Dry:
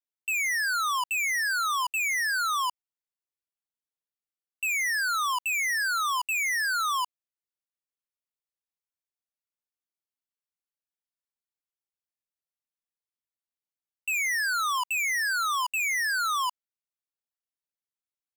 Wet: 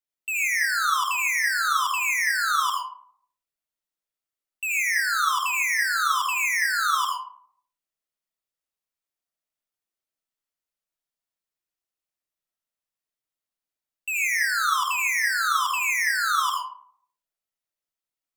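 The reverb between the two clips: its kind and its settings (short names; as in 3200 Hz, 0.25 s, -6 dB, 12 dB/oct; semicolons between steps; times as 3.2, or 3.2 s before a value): digital reverb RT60 0.61 s, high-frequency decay 0.45×, pre-delay 50 ms, DRR -1.5 dB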